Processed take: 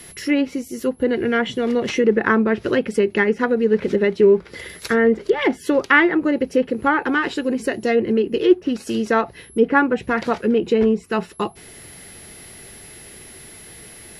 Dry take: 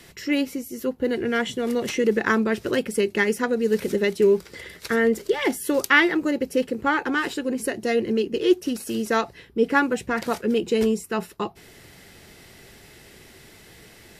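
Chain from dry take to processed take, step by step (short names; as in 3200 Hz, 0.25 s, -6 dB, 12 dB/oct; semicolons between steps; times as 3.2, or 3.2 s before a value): whine 11000 Hz -45 dBFS; treble ducked by the level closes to 2000 Hz, closed at -17.5 dBFS; gain +4.5 dB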